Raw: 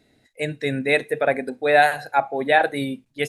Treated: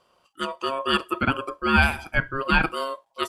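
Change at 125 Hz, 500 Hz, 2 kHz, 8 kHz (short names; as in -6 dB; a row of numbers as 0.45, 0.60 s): +3.0, -9.0, -1.5, -3.0 dB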